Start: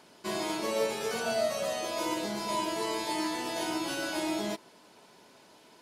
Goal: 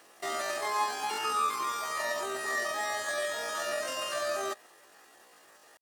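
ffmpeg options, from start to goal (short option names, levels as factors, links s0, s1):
-filter_complex "[0:a]asetrate=83250,aresample=44100,atempo=0.529732,acrossover=split=9700[s0][s1];[s1]acompressor=threshold=0.002:ratio=4:attack=1:release=60[s2];[s0][s2]amix=inputs=2:normalize=0"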